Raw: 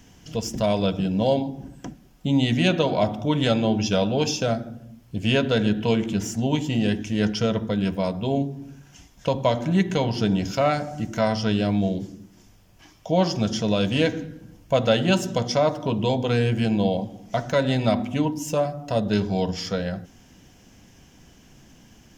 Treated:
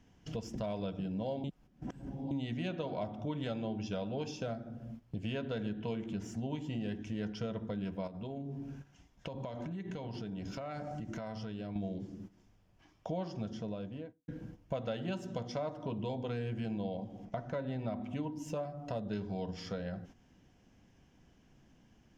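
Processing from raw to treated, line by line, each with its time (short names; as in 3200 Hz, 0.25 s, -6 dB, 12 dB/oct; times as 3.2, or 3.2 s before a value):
1.44–2.31 reverse
8.07–11.76 compressor 12:1, threshold -30 dBFS
13.11–14.28 studio fade out
17.25–18.02 high shelf 3000 Hz -10.5 dB
whole clip: gate -44 dBFS, range -12 dB; compressor 3:1, threshold -40 dBFS; LPF 2300 Hz 6 dB/oct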